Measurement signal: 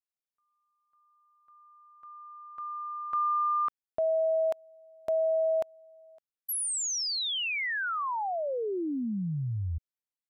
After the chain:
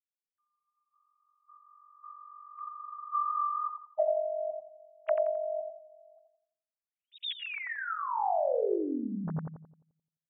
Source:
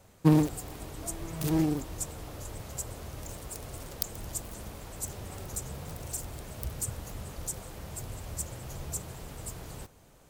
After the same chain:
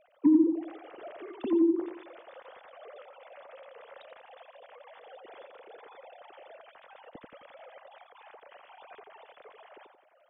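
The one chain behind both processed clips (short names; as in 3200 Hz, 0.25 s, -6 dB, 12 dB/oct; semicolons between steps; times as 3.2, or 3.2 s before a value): sine-wave speech; treble ducked by the level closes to 370 Hz, closed at -21 dBFS; darkening echo 87 ms, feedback 44%, low-pass 1400 Hz, level -4.5 dB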